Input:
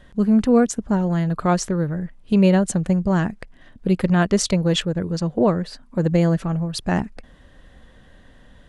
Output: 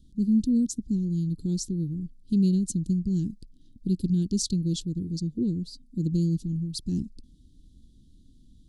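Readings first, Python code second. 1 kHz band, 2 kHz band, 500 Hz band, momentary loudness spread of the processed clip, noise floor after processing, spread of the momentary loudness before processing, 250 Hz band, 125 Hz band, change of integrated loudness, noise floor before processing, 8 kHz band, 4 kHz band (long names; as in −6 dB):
below −40 dB, below −35 dB, −18.5 dB, 9 LU, −56 dBFS, 9 LU, −6.0 dB, −6.0 dB, −7.0 dB, −50 dBFS, −6.0 dB, −9.0 dB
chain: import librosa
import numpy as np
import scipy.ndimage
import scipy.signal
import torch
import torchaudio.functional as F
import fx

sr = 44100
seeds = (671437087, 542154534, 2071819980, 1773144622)

y = scipy.signal.sosfilt(scipy.signal.ellip(3, 1.0, 40, [310.0, 4200.0], 'bandstop', fs=sr, output='sos'), x)
y = F.gain(torch.from_numpy(y), -5.0).numpy()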